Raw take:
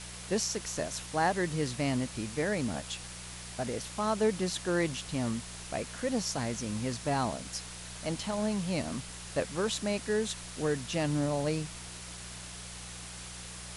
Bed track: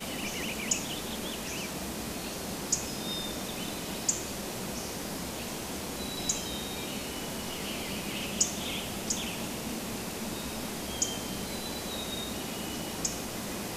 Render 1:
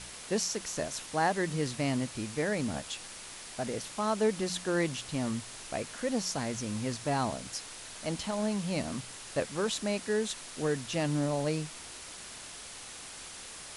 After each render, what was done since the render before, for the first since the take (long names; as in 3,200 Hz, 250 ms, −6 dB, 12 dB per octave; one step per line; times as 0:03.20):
hum removal 60 Hz, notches 3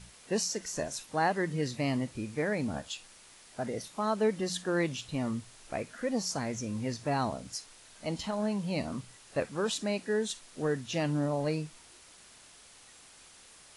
noise reduction from a noise print 10 dB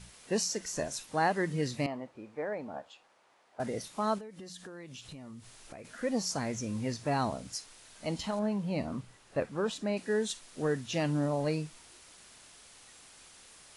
0:01.86–0:03.60: resonant band-pass 750 Hz, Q 1.2
0:04.18–0:05.85: downward compressor 8 to 1, threshold −43 dBFS
0:08.39–0:09.97: high-shelf EQ 2,900 Hz −10 dB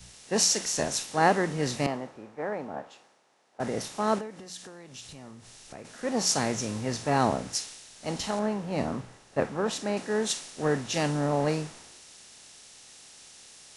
compressor on every frequency bin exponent 0.6
multiband upward and downward expander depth 100%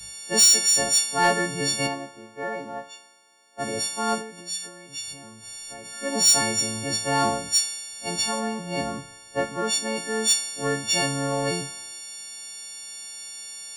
every partial snapped to a pitch grid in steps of 4 semitones
soft clipping −10 dBFS, distortion −14 dB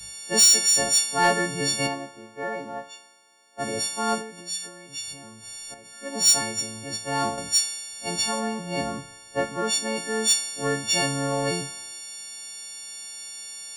0:05.74–0:07.38: expander for the loud parts, over −28 dBFS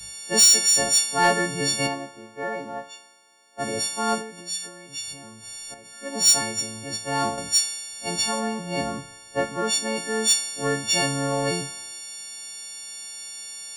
level +1 dB